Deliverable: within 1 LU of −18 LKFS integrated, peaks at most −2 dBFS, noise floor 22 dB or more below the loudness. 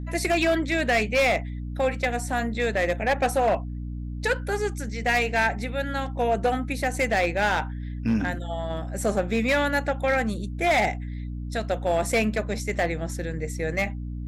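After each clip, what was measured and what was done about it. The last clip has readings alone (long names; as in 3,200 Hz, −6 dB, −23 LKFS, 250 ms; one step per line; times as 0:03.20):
share of clipped samples 1.7%; peaks flattened at −16.5 dBFS; mains hum 60 Hz; hum harmonics up to 300 Hz; level of the hum −30 dBFS; integrated loudness −25.5 LKFS; sample peak −16.5 dBFS; target loudness −18.0 LKFS
→ clipped peaks rebuilt −16.5 dBFS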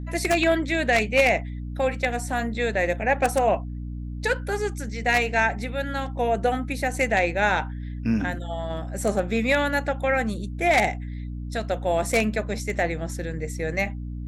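share of clipped samples 0.0%; mains hum 60 Hz; hum harmonics up to 300 Hz; level of the hum −30 dBFS
→ hum removal 60 Hz, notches 5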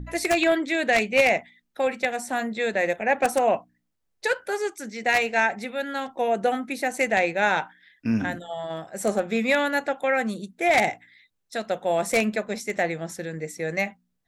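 mains hum none found; integrated loudness −24.5 LKFS; sample peak −7.0 dBFS; target loudness −18.0 LKFS
→ level +6.5 dB
brickwall limiter −2 dBFS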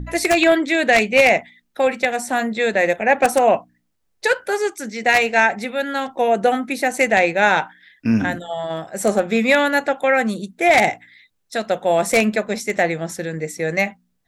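integrated loudness −18.5 LKFS; sample peak −2.0 dBFS; background noise floor −69 dBFS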